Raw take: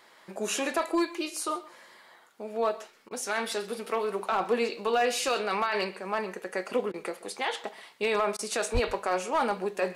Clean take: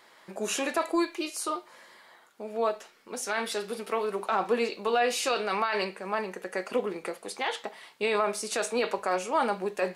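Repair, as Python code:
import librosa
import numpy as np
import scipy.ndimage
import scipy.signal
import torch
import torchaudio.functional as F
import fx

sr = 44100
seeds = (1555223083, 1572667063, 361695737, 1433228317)

y = fx.fix_declip(x, sr, threshold_db=-18.5)
y = fx.fix_deplosive(y, sr, at_s=(8.73,))
y = fx.fix_interpolate(y, sr, at_s=(3.09, 6.92, 8.37), length_ms=18.0)
y = fx.fix_echo_inverse(y, sr, delay_ms=130, level_db=-19.5)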